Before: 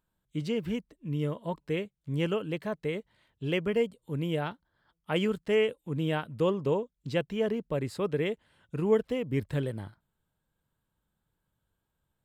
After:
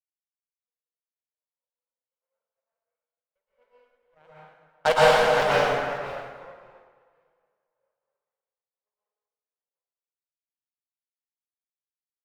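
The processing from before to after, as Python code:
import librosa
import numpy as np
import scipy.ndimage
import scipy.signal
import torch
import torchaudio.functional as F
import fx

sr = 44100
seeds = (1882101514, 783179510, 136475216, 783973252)

y = fx.cvsd(x, sr, bps=64000)
y = fx.doppler_pass(y, sr, speed_mps=17, closest_m=2.4, pass_at_s=4.89)
y = scipy.signal.sosfilt(scipy.signal.butter(2, 1600.0, 'lowpass', fs=sr, output='sos'), y)
y = fx.echo_pitch(y, sr, ms=223, semitones=-1, count=3, db_per_echo=-6.0)
y = fx.leveller(y, sr, passes=2)
y = scipy.signal.sosfilt(scipy.signal.butter(8, 510.0, 'highpass', fs=sr, output='sos'), y)
y = fx.cheby_harmonics(y, sr, harmonics=(6, 7, 8), levels_db=(-19, -18, -30), full_scale_db=-19.0)
y = fx.echo_multitap(y, sr, ms=(52, 317), db=(-12.0, -13.0))
y = fx.rev_plate(y, sr, seeds[0], rt60_s=2.2, hf_ratio=0.75, predelay_ms=105, drr_db=-8.5)
y = fx.band_widen(y, sr, depth_pct=100)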